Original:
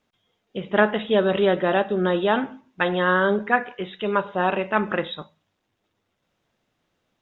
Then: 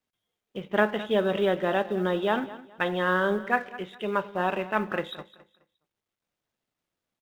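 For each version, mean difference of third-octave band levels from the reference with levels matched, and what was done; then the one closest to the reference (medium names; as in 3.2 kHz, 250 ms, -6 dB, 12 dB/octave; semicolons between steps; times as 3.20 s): 4.0 dB: companding laws mixed up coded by A; on a send: feedback delay 210 ms, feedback 28%, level -17 dB; on the sum: trim -4.5 dB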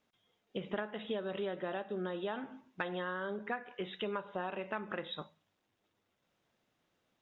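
2.5 dB: bass shelf 81 Hz -7.5 dB; compression 12:1, threshold -29 dBFS, peak gain reduction 18 dB; trim -5 dB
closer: second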